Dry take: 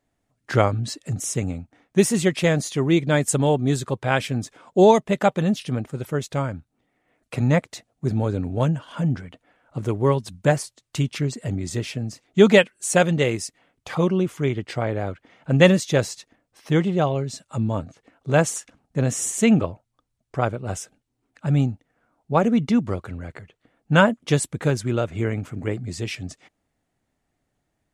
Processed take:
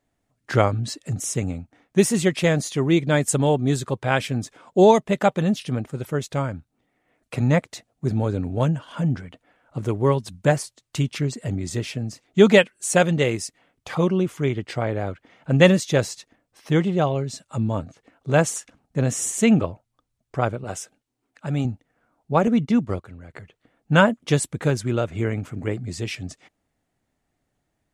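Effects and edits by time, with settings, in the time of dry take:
20.64–21.65 s: bass shelf 170 Hz -10 dB
22.47–23.34 s: gate -30 dBFS, range -8 dB

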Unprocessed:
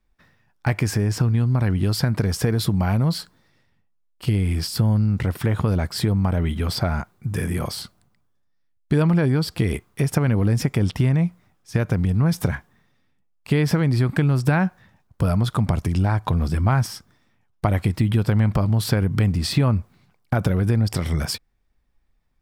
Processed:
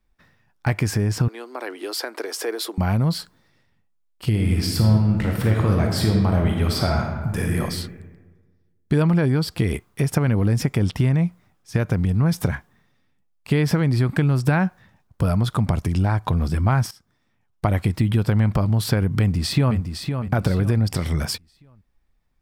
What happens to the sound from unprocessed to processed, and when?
1.28–2.78 s: steep high-pass 320 Hz 48 dB/octave
4.29–7.59 s: reverb throw, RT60 1.4 s, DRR 0.5 dB
16.91–17.68 s: fade in, from -16 dB
19.19–19.77 s: echo throw 510 ms, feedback 35%, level -7 dB

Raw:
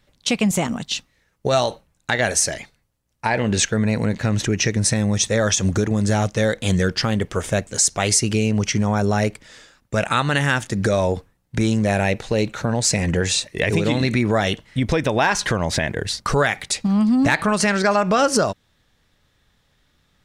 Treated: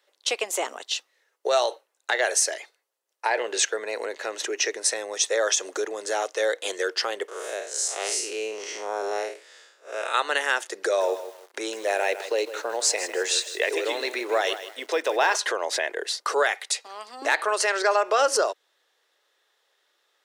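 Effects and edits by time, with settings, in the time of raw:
7.28–10.14 s: spectral blur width 142 ms
10.85–15.36 s: bit-crushed delay 157 ms, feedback 35%, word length 6-bit, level -11.5 dB
16.54–17.22 s: high-pass 700 Hz 6 dB/octave
whole clip: steep high-pass 370 Hz 48 dB/octave; band-stop 2.3 kHz, Q 19; trim -3 dB

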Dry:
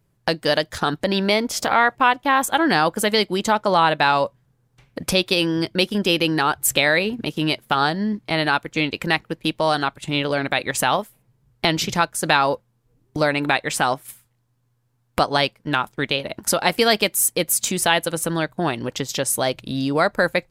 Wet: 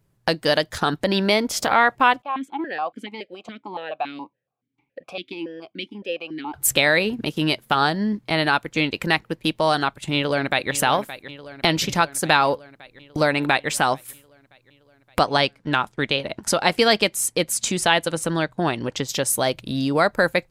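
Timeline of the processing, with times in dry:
2.22–6.54 s: stepped vowel filter 7.1 Hz
10.14–10.73 s: echo throw 570 ms, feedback 70%, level -14 dB
15.19–19.08 s: low-pass 8.6 kHz

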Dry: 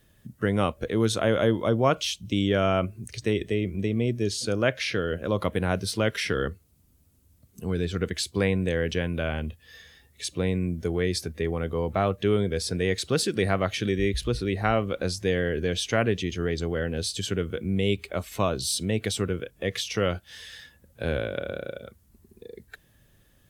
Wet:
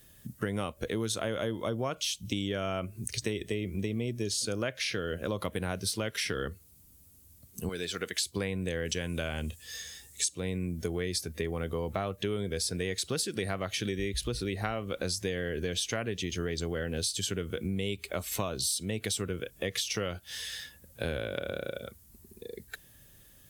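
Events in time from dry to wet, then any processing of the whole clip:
7.69–8.22 s: high-pass 740 Hz 6 dB/octave
8.85–10.40 s: peaking EQ 7.5 kHz +12 dB 1 oct
whole clip: treble shelf 4.4 kHz +11.5 dB; compression, threshold -29 dBFS

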